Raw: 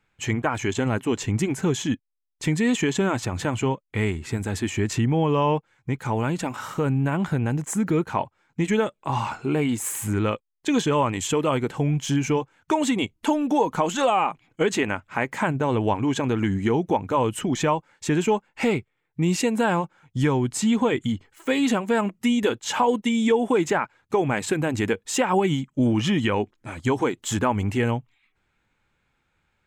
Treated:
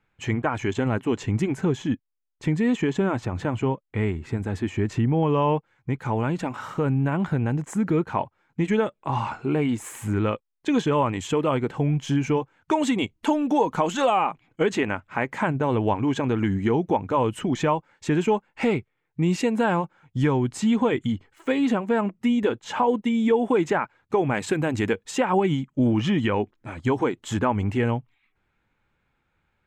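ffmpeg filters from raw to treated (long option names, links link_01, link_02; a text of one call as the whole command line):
ffmpeg -i in.wav -af "asetnsamples=nb_out_samples=441:pad=0,asendcmd='1.65 lowpass f 1400;5.23 lowpass f 2500;12.71 lowpass f 5200;14.18 lowpass f 3000;21.52 lowpass f 1600;23.33 lowpass f 2700;24.35 lowpass f 5000;25.11 lowpass f 2500',lowpass=frequency=2400:poles=1" out.wav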